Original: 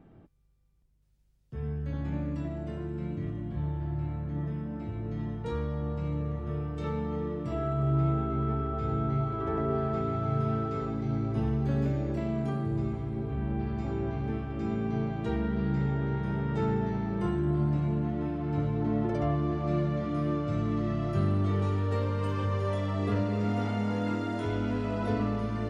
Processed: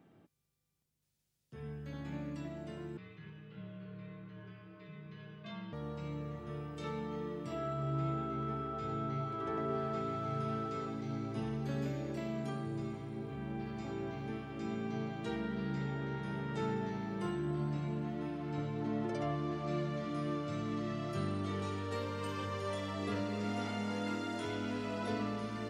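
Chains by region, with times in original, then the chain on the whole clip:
0:02.97–0:05.73: frequency shifter −260 Hz + loudspeaker in its box 180–4,300 Hz, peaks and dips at 220 Hz −5 dB, 400 Hz +3 dB, 800 Hz −10 dB, 2,500 Hz +4 dB
whole clip: high-pass filter 140 Hz 12 dB per octave; high-shelf EQ 2,200 Hz +11 dB; level −7 dB

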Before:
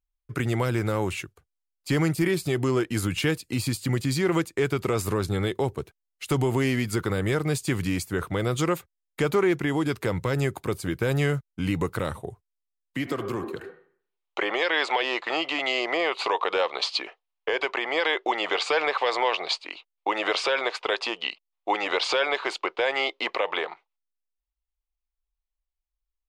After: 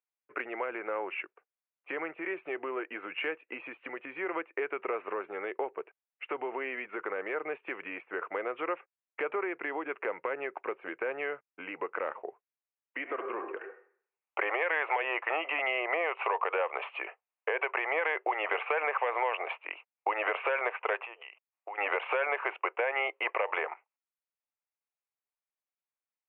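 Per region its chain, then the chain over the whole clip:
0:21.05–0:21.78: high-pass filter 340 Hz + downward compressor 10 to 1, threshold −37 dBFS
whole clip: Butterworth low-pass 2,700 Hz 72 dB per octave; downward compressor, threshold −25 dBFS; high-pass filter 440 Hz 24 dB per octave

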